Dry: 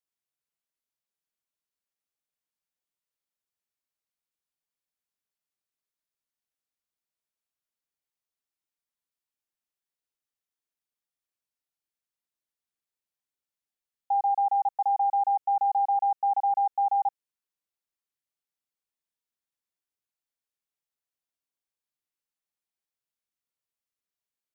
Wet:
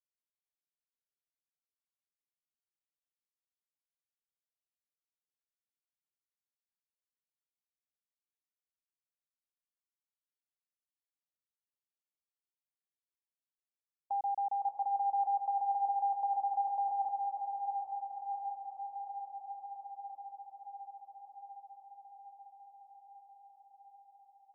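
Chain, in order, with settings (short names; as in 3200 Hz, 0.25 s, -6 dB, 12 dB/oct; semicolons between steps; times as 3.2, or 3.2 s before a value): gate -31 dBFS, range -24 dB; Bessel low-pass 610 Hz, order 2; limiter -29.5 dBFS, peak gain reduction 4.5 dB; on a send: diffused feedback echo 0.597 s, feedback 75%, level -5 dB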